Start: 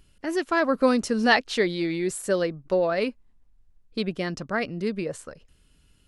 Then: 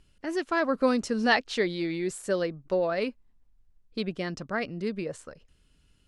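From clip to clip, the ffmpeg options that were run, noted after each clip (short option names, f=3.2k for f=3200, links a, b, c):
-af "lowpass=9k,volume=-3.5dB"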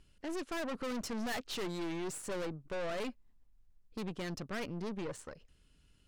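-af "aeval=exprs='(tanh(63.1*val(0)+0.55)-tanh(0.55))/63.1':c=same"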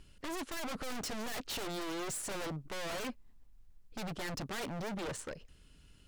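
-af "aeval=exprs='0.0112*(abs(mod(val(0)/0.0112+3,4)-2)-1)':c=same,volume=6.5dB"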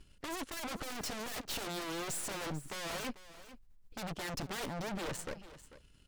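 -af "aeval=exprs='0.0237*(cos(1*acos(clip(val(0)/0.0237,-1,1)))-cos(1*PI/2))+0.00422*(cos(4*acos(clip(val(0)/0.0237,-1,1)))-cos(4*PI/2))+0.00106*(cos(7*acos(clip(val(0)/0.0237,-1,1)))-cos(7*PI/2))':c=same,aecho=1:1:443:0.168"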